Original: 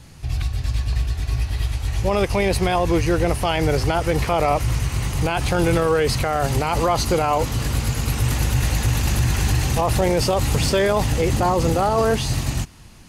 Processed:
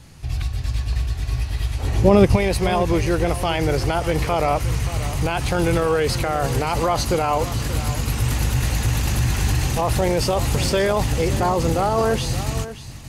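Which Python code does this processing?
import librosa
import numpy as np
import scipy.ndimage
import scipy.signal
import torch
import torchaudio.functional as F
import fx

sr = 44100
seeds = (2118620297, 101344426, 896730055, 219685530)

y = fx.peak_eq(x, sr, hz=fx.line((1.78, 480.0), (2.35, 140.0)), db=13.0, octaves=2.6, at=(1.78, 2.35), fade=0.02)
y = y + 10.0 ** (-13.5 / 20.0) * np.pad(y, (int(578 * sr / 1000.0), 0))[:len(y)]
y = F.gain(torch.from_numpy(y), -1.0).numpy()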